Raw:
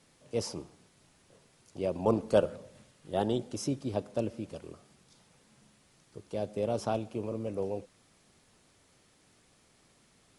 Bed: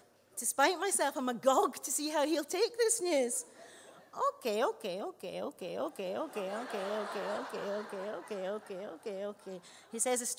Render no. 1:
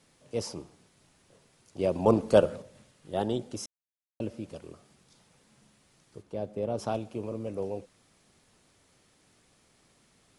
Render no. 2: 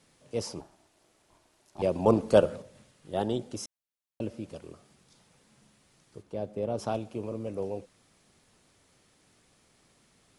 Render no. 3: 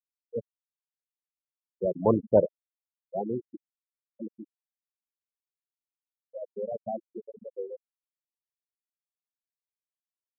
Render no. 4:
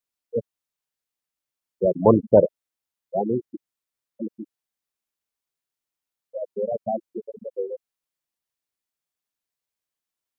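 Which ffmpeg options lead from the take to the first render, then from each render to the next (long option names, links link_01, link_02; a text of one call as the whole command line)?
ffmpeg -i in.wav -filter_complex "[0:a]asplit=3[link_01][link_02][link_03];[link_01]afade=type=out:start_time=6.21:duration=0.02[link_04];[link_02]highshelf=frequency=2400:gain=-10,afade=type=in:start_time=6.21:duration=0.02,afade=type=out:start_time=6.78:duration=0.02[link_05];[link_03]afade=type=in:start_time=6.78:duration=0.02[link_06];[link_04][link_05][link_06]amix=inputs=3:normalize=0,asplit=5[link_07][link_08][link_09][link_10][link_11];[link_07]atrim=end=1.792[link_12];[link_08]atrim=start=1.788:end=2.622,asetpts=PTS-STARTPTS,volume=4.5dB[link_13];[link_09]atrim=start=2.618:end=3.66,asetpts=PTS-STARTPTS,afade=type=out:start_time=1.038:duration=0.004:curve=hsin[link_14];[link_10]atrim=start=3.66:end=4.2,asetpts=PTS-STARTPTS,volume=0[link_15];[link_11]atrim=start=4.2,asetpts=PTS-STARTPTS,afade=type=in:duration=0.004:curve=hsin[link_16];[link_12][link_13]acrossfade=duration=0.004:curve1=hsin:curve2=hsin[link_17];[link_14][link_15][link_16]concat=n=3:v=0:a=1[link_18];[link_17][link_18]acrossfade=duration=0.004:curve1=hsin:curve2=hsin" out.wav
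ffmpeg -i in.wav -filter_complex "[0:a]asettb=1/sr,asplit=3[link_01][link_02][link_03];[link_01]atrim=end=0.604[link_04];[link_02]atrim=start=0.6:end=1.82,asetpts=PTS-STARTPTS,afade=type=in:duration=0.004:curve=qsin,afade=type=out:start_time=1.216:duration=0.004:curve=qsin,aeval=exprs='val(0)*sin(2*PI*490*n/s)':channel_layout=same[link_05];[link_03]atrim=start=1.816[link_06];[link_04][link_05]acrossfade=duration=0.004:curve1=hsin:curve2=qsin[link_07];[link_07][link_06]acrossfade=duration=0.004:curve1=qsin:curve2=hsin" out.wav
ffmpeg -i in.wav -af "lowpass=frequency=2900:poles=1,afftfilt=real='re*gte(hypot(re,im),0.141)':imag='im*gte(hypot(re,im),0.141)':win_size=1024:overlap=0.75" out.wav
ffmpeg -i in.wav -af "volume=7.5dB,alimiter=limit=-3dB:level=0:latency=1" out.wav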